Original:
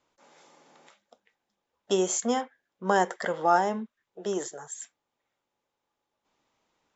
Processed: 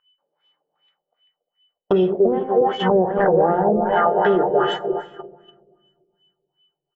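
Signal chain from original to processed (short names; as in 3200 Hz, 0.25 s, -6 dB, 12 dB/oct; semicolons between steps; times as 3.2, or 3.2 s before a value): regenerating reverse delay 0.145 s, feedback 78%, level -10 dB; low shelf 260 Hz +8 dB; speakerphone echo 0.28 s, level -11 dB; whine 3000 Hz -49 dBFS; treble ducked by the level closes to 360 Hz, closed at -20.5 dBFS; in parallel at +2.5 dB: upward compressor, threshold -35 dBFS; on the sum: de-hum 87.12 Hz, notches 31; gate -30 dBFS, range -40 dB; reverb RT60 1.6 s, pre-delay 7 ms, DRR 12.5 dB; LFO low-pass sine 2.6 Hz 470–3100 Hz; limiter -11.5 dBFS, peak gain reduction 6.5 dB; fifteen-band EQ 100 Hz -5 dB, 250 Hz -12 dB, 1600 Hz +4 dB, 4000 Hz +6 dB; gain +6.5 dB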